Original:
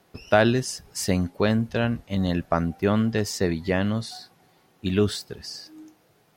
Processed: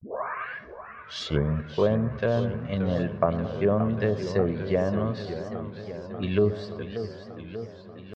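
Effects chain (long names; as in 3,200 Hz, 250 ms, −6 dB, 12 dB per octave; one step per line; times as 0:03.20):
turntable start at the beginning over 1.39 s
high-pass filter 81 Hz 12 dB per octave
noise gate with hold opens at −56 dBFS
low-shelf EQ 170 Hz −4 dB
feedback echo with a low-pass in the loop 86 ms, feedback 61%, low-pass 2,200 Hz, level −16 dB
low-pass that shuts in the quiet parts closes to 1,100 Hz, open at −18.5 dBFS
comb filter 1.8 ms, depth 48%
tempo change 0.78×
treble cut that deepens with the level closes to 820 Hz, closed at −19 dBFS
feedback echo with a swinging delay time 583 ms, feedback 69%, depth 196 cents, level −10.5 dB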